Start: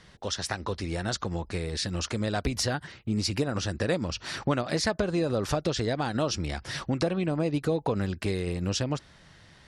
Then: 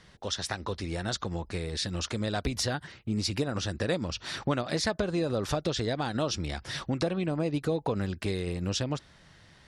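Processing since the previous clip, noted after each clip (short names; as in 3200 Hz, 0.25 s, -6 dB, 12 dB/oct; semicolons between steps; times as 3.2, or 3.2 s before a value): dynamic EQ 3600 Hz, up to +5 dB, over -51 dBFS, Q 5.8; gain -2 dB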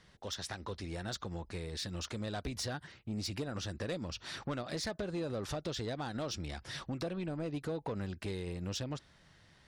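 soft clip -23.5 dBFS, distortion -16 dB; gain -6.5 dB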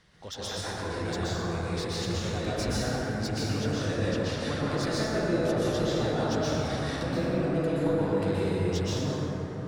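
plate-style reverb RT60 4.4 s, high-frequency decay 0.3×, pre-delay 0.11 s, DRR -9.5 dB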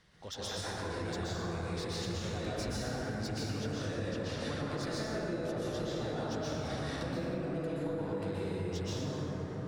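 compressor, threshold -29 dBFS, peak gain reduction 7.5 dB; gain -3.5 dB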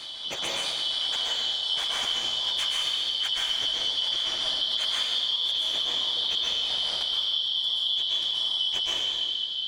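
four-band scrambler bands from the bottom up 3412; reverse echo 0.765 s -8.5 dB; gain +8 dB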